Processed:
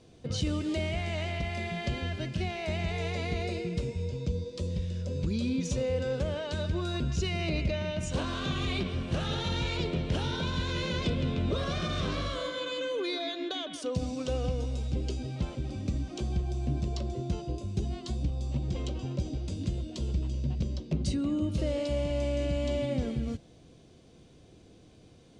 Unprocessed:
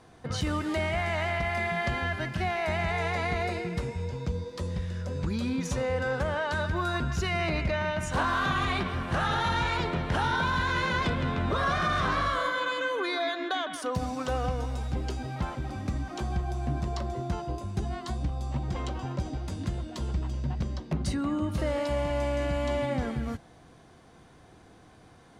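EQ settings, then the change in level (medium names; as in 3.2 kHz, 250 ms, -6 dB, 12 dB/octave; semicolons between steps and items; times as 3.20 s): low-pass 8.6 kHz 24 dB/octave; high-order bell 1.2 kHz -12.5 dB; 0.0 dB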